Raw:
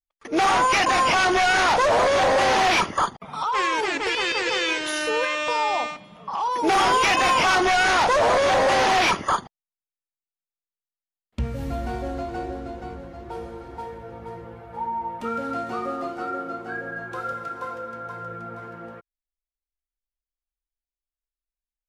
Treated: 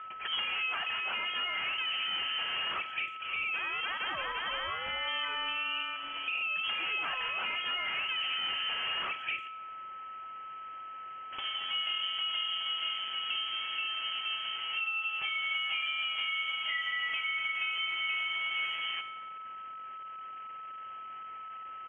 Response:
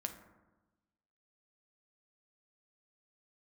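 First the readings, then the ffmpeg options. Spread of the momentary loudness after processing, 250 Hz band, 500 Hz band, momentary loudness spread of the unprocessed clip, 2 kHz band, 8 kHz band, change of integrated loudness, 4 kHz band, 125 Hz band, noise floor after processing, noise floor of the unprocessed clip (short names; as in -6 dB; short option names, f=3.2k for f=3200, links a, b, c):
12 LU, -28.0 dB, -27.0 dB, 19 LU, -8.0 dB, under -40 dB, -10.5 dB, -2.0 dB, under -25 dB, -44 dBFS, under -85 dBFS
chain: -filter_complex "[0:a]aeval=exprs='val(0)+0.5*0.0119*sgn(val(0))':c=same,highpass=f=430:w=0.5412,highpass=f=430:w=1.3066,acompressor=threshold=-33dB:ratio=20,aeval=exprs='val(0)+0.00794*sin(2*PI*2300*n/s)':c=same,volume=29dB,asoftclip=hard,volume=-29dB,asplit=2[a][b];[1:a]atrim=start_sample=2205[c];[b][c]afir=irnorm=-1:irlink=0,volume=0.5dB[d];[a][d]amix=inputs=2:normalize=0,lowpass=f=3.1k:t=q:w=0.5098,lowpass=f=3.1k:t=q:w=0.6013,lowpass=f=3.1k:t=q:w=0.9,lowpass=f=3.1k:t=q:w=2.563,afreqshift=-3600,asplit=2[e][f];[f]adelay=100,highpass=300,lowpass=3.4k,asoftclip=type=hard:threshold=-28dB,volume=-27dB[g];[e][g]amix=inputs=2:normalize=0,volume=-3.5dB"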